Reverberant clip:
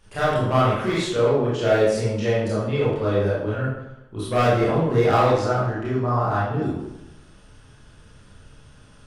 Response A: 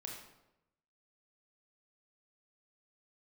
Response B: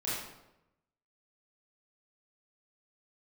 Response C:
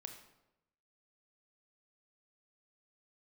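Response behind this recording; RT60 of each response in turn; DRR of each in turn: B; 0.90, 0.90, 0.90 s; -1.0, -9.5, 5.0 dB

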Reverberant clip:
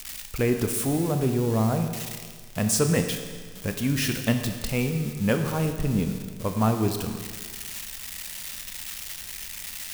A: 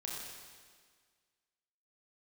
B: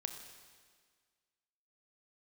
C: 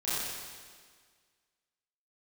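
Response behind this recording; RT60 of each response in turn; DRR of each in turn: B; 1.7, 1.7, 1.7 s; -4.0, 5.5, -12.5 dB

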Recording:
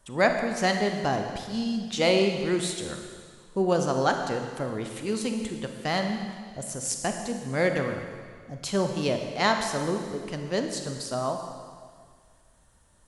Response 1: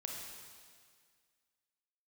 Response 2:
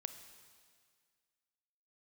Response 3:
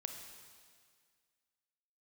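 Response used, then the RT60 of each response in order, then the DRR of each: 3; 1.9, 1.9, 1.9 s; -0.5, 9.0, 4.5 dB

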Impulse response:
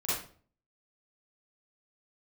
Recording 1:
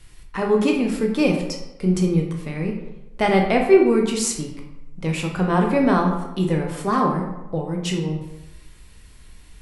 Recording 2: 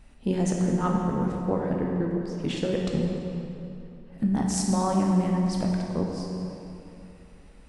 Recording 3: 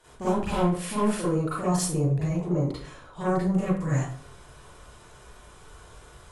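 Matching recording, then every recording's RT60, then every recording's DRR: 3; 1.0, 2.9, 0.45 s; 1.0, -1.0, -11.5 dB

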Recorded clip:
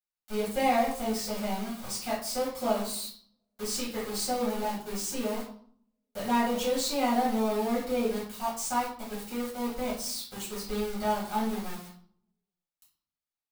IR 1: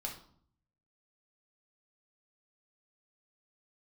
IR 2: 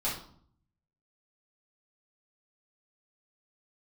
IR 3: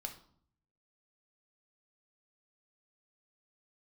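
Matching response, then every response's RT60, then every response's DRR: 2; 0.60, 0.60, 0.60 s; -0.5, -8.5, 4.0 dB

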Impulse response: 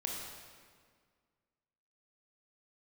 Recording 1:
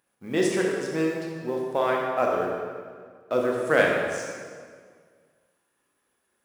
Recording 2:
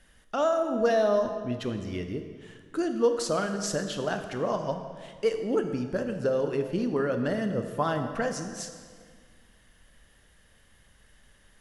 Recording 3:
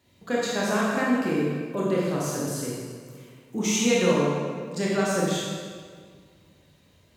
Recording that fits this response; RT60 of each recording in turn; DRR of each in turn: 1; 1.8, 1.8, 1.8 s; -1.5, 6.5, -6.0 dB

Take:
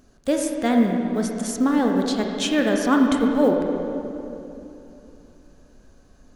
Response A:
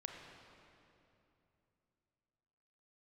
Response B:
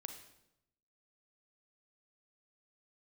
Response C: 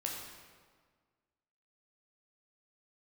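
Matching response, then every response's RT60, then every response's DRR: A; 2.9, 0.85, 1.6 s; 1.5, 6.0, -1.5 dB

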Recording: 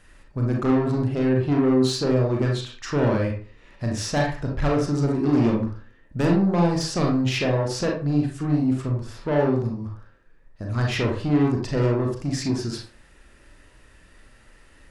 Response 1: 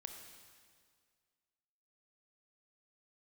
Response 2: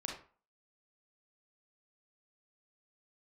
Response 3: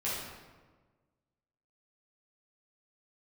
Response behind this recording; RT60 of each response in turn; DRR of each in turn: 2; 1.9, 0.40, 1.4 s; 4.0, -0.5, -9.5 dB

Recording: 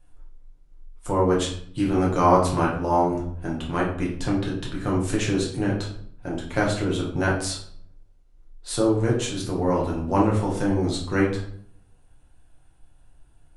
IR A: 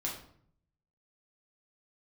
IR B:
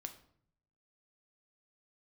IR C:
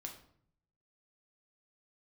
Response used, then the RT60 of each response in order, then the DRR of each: A; 0.60, 0.60, 0.60 s; -3.5, 6.5, 2.0 dB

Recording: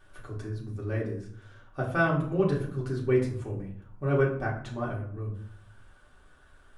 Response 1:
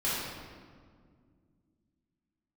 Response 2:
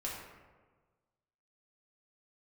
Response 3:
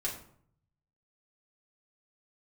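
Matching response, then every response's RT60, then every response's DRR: 3; 2.0, 1.4, 0.60 s; -9.5, -5.0, -5.0 dB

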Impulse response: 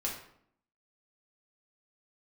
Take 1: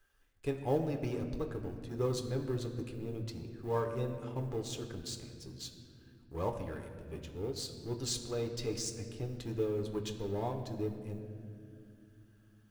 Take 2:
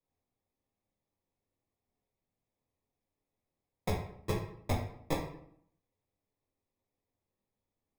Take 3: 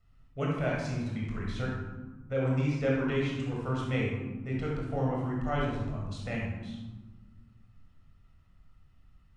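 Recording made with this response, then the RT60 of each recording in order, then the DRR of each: 2; 2.4, 0.65, 1.4 s; 3.5, -3.5, -3.5 dB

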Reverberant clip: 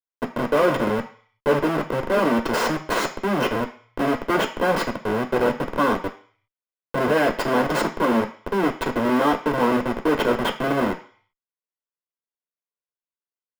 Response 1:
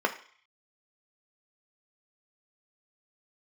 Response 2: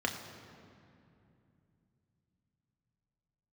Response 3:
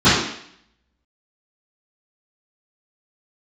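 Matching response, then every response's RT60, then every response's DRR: 1; 0.50, 2.7, 0.65 s; 4.5, 1.5, -19.5 dB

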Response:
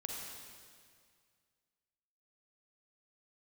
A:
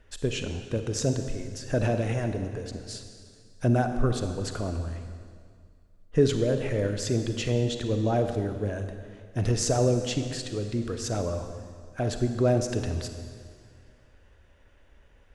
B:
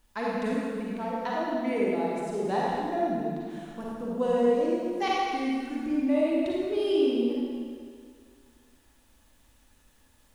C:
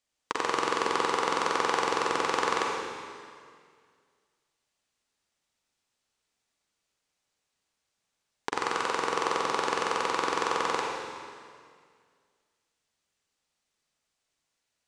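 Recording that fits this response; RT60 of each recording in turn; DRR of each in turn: C; 2.0, 2.0, 2.0 s; 7.0, -5.5, -1.0 dB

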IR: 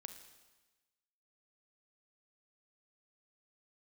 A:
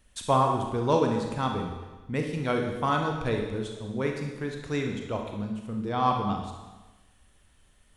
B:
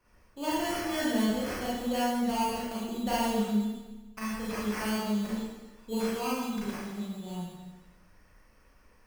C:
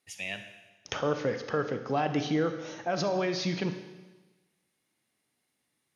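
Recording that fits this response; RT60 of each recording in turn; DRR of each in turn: C; 1.2, 1.2, 1.2 s; 2.0, -8.0, 7.5 dB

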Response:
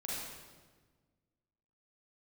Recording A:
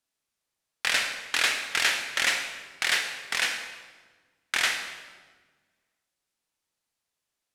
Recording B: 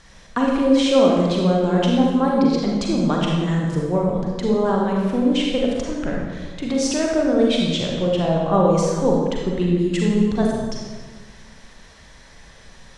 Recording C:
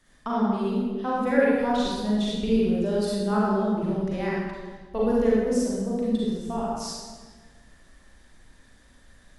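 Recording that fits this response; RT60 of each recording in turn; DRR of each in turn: C; 1.4, 1.4, 1.4 s; 5.5, -2.0, -6.5 dB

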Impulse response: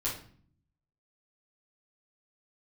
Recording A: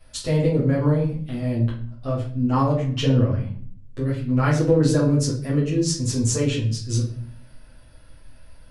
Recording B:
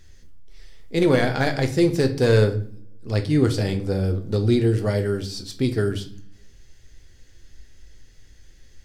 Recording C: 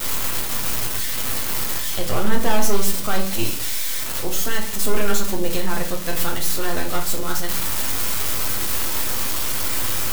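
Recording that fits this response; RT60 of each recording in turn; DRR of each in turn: A; 0.50, 0.50, 0.50 s; -7.5, 5.5, 0.5 dB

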